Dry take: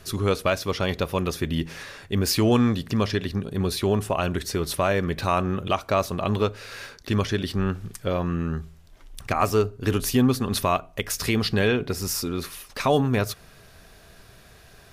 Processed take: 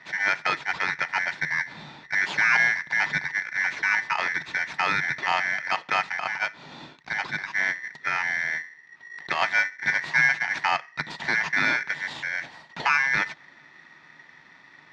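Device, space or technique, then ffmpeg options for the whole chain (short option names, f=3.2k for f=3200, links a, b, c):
ring modulator pedal into a guitar cabinet: -filter_complex "[0:a]asettb=1/sr,asplit=3[a][b][c];[a]atrim=end=6.194[d];[b]atrim=start=6.19:end=7.53,asetpts=PTS-STARTPTS,afade=t=in:d=0.004:c=qsin,afade=t=out:st=1.336:d=0.004:c=qsin,lowshelf=f=200:g=-11[e];[c]atrim=start=7.526[f];[d][e]acrossfade=d=0.004:c1=hsin:c2=qsin[g];[g][f]acrossfade=d=0.004:c1=qsin:c2=hsin,aeval=exprs='val(0)*sgn(sin(2*PI*1900*n/s))':c=same,highpass=85,equalizer=f=93:t=q:w=4:g=-8,equalizer=f=150:t=q:w=4:g=10,equalizer=f=510:t=q:w=4:g=-5,equalizer=f=920:t=q:w=4:g=9,equalizer=f=1.8k:t=q:w=4:g=3,equalizer=f=3k:t=q:w=4:g=-7,lowpass=f=4.1k:w=0.5412,lowpass=f=4.1k:w=1.3066,volume=-2dB"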